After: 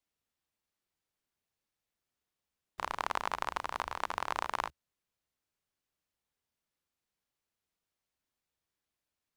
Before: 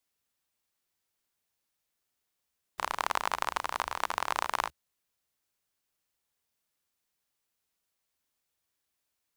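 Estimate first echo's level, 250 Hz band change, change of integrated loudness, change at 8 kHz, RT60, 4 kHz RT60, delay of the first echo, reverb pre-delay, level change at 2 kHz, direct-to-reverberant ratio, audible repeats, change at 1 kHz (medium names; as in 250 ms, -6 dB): no echo, -1.0 dB, -4.0 dB, -8.0 dB, no reverb, no reverb, no echo, no reverb, -4.0 dB, no reverb, no echo, -3.5 dB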